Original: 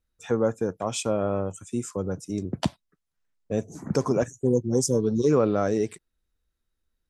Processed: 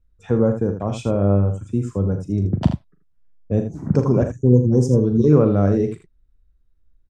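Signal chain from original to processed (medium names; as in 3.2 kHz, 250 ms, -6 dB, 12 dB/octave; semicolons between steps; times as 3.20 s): RIAA curve playback; early reflections 40 ms -10 dB, 80 ms -9 dB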